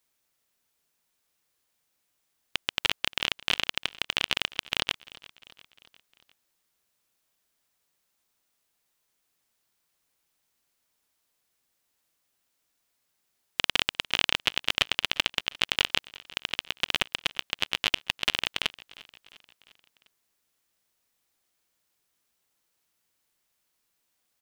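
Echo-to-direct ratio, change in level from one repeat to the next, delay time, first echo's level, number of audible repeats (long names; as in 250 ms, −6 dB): −20.0 dB, −5.0 dB, 351 ms, −21.5 dB, 3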